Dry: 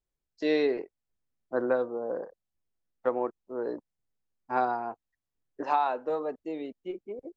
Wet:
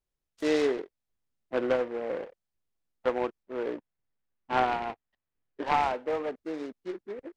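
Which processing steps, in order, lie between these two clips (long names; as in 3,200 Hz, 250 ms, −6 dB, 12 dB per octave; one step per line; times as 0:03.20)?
0:03.43–0:05.74: low-pass with resonance 2,100 Hz, resonance Q 1.5
short delay modulated by noise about 1,200 Hz, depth 0.055 ms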